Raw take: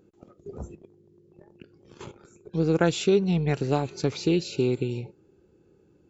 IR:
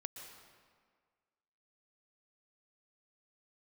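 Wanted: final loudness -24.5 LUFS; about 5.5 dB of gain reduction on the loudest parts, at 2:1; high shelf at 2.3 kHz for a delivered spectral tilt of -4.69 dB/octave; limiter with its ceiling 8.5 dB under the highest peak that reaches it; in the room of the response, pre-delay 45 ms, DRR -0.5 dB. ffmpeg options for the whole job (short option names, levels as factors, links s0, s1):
-filter_complex "[0:a]highshelf=f=2300:g=6.5,acompressor=threshold=0.0501:ratio=2,alimiter=limit=0.075:level=0:latency=1,asplit=2[s0][s1];[1:a]atrim=start_sample=2205,adelay=45[s2];[s1][s2]afir=irnorm=-1:irlink=0,volume=1.5[s3];[s0][s3]amix=inputs=2:normalize=0,volume=2"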